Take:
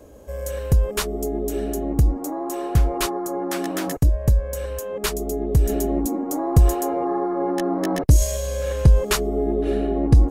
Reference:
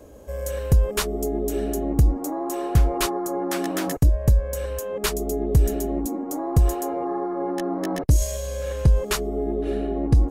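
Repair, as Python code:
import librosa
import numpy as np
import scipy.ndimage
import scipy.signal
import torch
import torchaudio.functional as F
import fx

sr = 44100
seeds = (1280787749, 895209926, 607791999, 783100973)

y = fx.fix_level(x, sr, at_s=5.69, step_db=-3.5)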